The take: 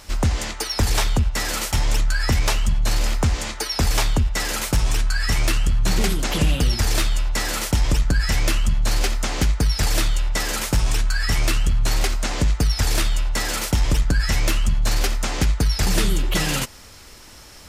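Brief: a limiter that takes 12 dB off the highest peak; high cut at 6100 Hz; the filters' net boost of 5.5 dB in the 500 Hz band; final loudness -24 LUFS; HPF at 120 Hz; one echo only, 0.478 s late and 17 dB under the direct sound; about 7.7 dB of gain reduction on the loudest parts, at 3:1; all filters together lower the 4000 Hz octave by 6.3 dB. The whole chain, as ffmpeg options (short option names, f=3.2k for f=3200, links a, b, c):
-af "highpass=120,lowpass=6.1k,equalizer=f=500:t=o:g=7,equalizer=f=4k:t=o:g=-7.5,acompressor=threshold=-29dB:ratio=3,alimiter=level_in=0.5dB:limit=-24dB:level=0:latency=1,volume=-0.5dB,aecho=1:1:478:0.141,volume=10.5dB"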